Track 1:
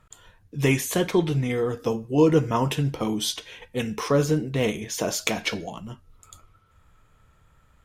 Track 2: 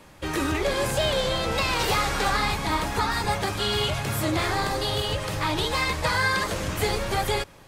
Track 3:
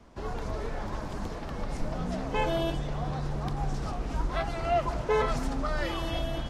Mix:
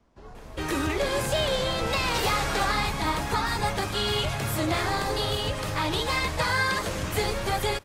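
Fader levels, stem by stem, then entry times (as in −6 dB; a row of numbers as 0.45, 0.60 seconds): muted, −1.5 dB, −10.5 dB; muted, 0.35 s, 0.00 s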